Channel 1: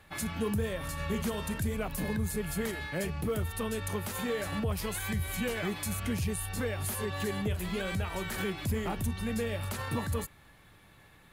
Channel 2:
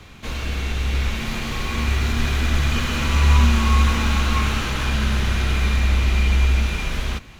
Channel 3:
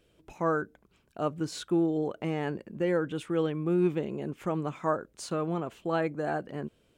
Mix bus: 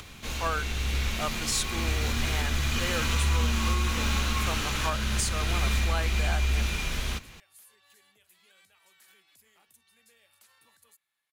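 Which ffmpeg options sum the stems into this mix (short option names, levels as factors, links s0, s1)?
-filter_complex "[0:a]aderivative,highshelf=f=7700:g=-12,adelay=700,volume=0.266[s0];[1:a]acompressor=mode=upward:threshold=0.0178:ratio=2.5,volume=0.447[s1];[2:a]highpass=820,highshelf=f=4700:g=9.5,volume=1.26[s2];[s1][s2]amix=inputs=2:normalize=0,highshelf=f=3500:g=9,alimiter=limit=0.158:level=0:latency=1:release=332,volume=1[s3];[s0][s3]amix=inputs=2:normalize=0"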